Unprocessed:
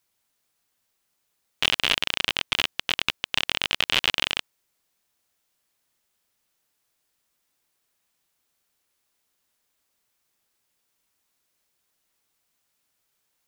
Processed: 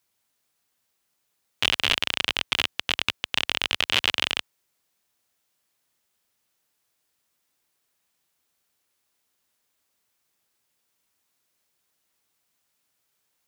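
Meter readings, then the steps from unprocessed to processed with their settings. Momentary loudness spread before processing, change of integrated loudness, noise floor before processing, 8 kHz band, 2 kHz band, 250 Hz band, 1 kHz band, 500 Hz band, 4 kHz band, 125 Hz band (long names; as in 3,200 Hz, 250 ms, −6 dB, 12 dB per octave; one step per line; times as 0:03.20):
5 LU, 0.0 dB, −75 dBFS, 0.0 dB, 0.0 dB, 0.0 dB, 0.0 dB, 0.0 dB, 0.0 dB, −0.5 dB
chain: high-pass filter 54 Hz 12 dB per octave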